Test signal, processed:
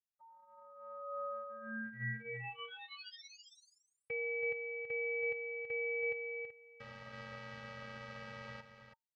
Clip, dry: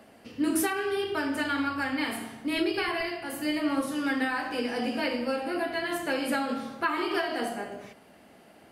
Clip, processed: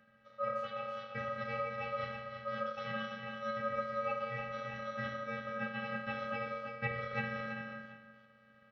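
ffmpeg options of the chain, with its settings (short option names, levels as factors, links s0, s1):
-filter_complex "[0:a]highshelf=f=2100:g=-8.5,afreqshift=60,highpass=f=140:w=0.5412,highpass=f=140:w=1.3066,equalizer=f=160:t=q:w=4:g=-7,equalizer=f=280:t=q:w=4:g=-5,equalizer=f=550:t=q:w=4:g=-6,equalizer=f=930:t=q:w=4:g=7,equalizer=f=2700:t=q:w=4:g=-6,lowpass=f=4100:w=0.5412,lowpass=f=4100:w=1.3066,afftfilt=real='hypot(re,im)*cos(PI*b)':imag='0':win_size=512:overlap=0.75,asplit=2[s0][s1];[s1]aecho=0:1:328:0.422[s2];[s0][s2]amix=inputs=2:normalize=0,aeval=exprs='val(0)*sin(2*PI*910*n/s)':c=same,volume=0.596"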